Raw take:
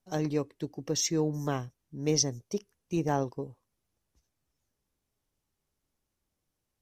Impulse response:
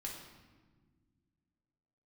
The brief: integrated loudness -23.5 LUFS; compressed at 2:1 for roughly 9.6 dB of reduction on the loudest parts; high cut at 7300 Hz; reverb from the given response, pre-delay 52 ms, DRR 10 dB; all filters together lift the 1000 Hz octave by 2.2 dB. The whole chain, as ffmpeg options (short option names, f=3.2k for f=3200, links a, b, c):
-filter_complex "[0:a]lowpass=7.3k,equalizer=f=1k:t=o:g=3,acompressor=threshold=-40dB:ratio=2,asplit=2[a][b];[1:a]atrim=start_sample=2205,adelay=52[c];[b][c]afir=irnorm=-1:irlink=0,volume=-8.5dB[d];[a][d]amix=inputs=2:normalize=0,volume=15.5dB"